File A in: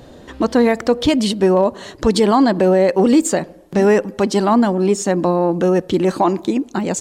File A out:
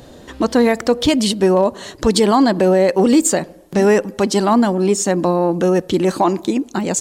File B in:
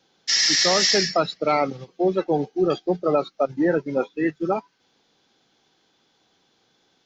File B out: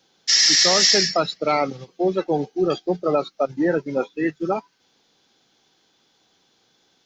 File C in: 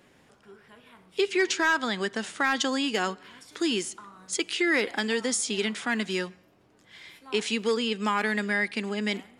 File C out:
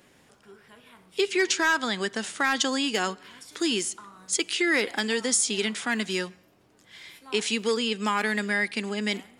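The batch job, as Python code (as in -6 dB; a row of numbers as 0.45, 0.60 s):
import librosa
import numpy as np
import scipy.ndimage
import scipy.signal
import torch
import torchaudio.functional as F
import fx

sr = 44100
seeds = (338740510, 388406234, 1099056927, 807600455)

y = fx.high_shelf(x, sr, hz=4800.0, db=7.0)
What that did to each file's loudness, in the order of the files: +0.5, +2.0, +1.5 LU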